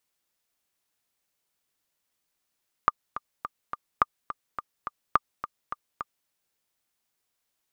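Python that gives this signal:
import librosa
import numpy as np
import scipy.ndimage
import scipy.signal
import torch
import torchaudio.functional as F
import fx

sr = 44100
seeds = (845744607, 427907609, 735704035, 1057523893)

y = fx.click_track(sr, bpm=211, beats=4, bars=3, hz=1200.0, accent_db=13.0, level_db=-5.5)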